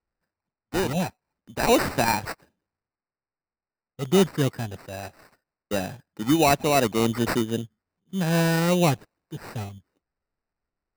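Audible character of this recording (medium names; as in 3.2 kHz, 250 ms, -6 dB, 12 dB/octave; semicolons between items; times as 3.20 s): aliases and images of a low sample rate 3.3 kHz, jitter 0%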